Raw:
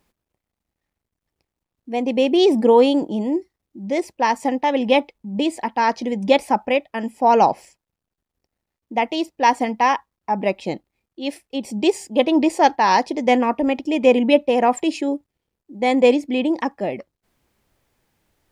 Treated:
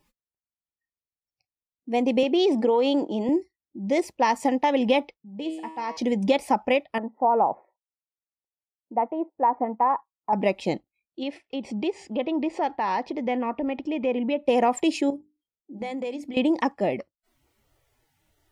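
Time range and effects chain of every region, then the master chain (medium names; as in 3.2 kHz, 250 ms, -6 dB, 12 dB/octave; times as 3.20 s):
2.23–3.29 s: compression, threshold -13 dBFS + band-pass 270–6100 Hz
5.14–5.97 s: treble shelf 7.5 kHz -9 dB + feedback comb 160 Hz, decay 0.85 s, mix 80%
6.98–10.33 s: low-pass 1.2 kHz 24 dB/octave + bass shelf 390 Hz -9.5 dB
11.23–14.46 s: low-pass 3 kHz + compression 2:1, threshold -30 dBFS + tape noise reduction on one side only encoder only
15.10–16.37 s: compression, threshold -29 dBFS + hum notches 50/100/150/200/250/300/350/400 Hz
whole clip: spectral noise reduction 25 dB; band-stop 1.6 kHz, Q 12; compression 6:1, threshold -17 dBFS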